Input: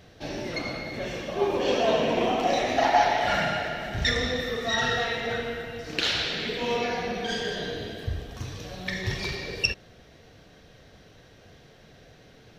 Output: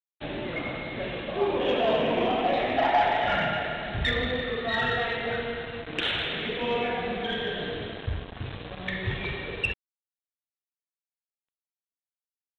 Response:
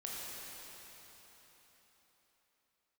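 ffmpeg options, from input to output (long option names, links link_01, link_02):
-af "aresample=8000,acrusher=bits=5:mix=0:aa=0.5,aresample=44100,asoftclip=type=tanh:threshold=-13.5dB"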